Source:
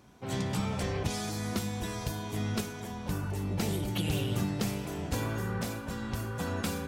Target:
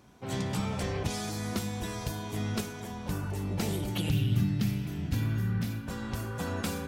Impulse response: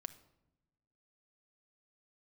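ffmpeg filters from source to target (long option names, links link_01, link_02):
-filter_complex "[0:a]asettb=1/sr,asplit=3[link_01][link_02][link_03];[link_01]atrim=end=4.104[link_04];[link_02]atrim=start=4.1:end=5.88,asetpts=PTS-STARTPTS,afade=type=in:duration=0.004:curve=qsin,afade=type=out:start_time=1.776:duration=0.004:curve=qsin,equalizer=frequency=125:width_type=o:width=1:gain=7,equalizer=frequency=250:width_type=o:width=1:gain=3,equalizer=frequency=500:width_type=o:width=1:gain=-12,equalizer=frequency=1000:width_type=o:width=1:gain=-8,equalizer=frequency=8000:width_type=o:width=1:gain=-9[link_05];[link_03]atrim=start=5.876[link_06];[link_04][link_05]acrossfade=duration=0.004:curve1=hsin:curve2=qsin[link_07];[link_07][link_06]acrossfade=duration=0.004:curve1=qsin:curve2=hsin"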